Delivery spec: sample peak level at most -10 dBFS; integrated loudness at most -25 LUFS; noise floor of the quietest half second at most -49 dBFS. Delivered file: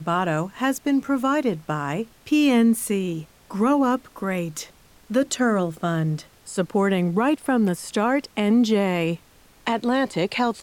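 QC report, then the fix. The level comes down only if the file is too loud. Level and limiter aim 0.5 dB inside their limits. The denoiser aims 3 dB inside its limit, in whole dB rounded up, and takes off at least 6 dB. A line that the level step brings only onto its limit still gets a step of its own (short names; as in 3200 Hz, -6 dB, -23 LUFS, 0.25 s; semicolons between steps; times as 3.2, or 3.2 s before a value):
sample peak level -8.5 dBFS: fail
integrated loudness -23.0 LUFS: fail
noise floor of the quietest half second -53 dBFS: OK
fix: gain -2.5 dB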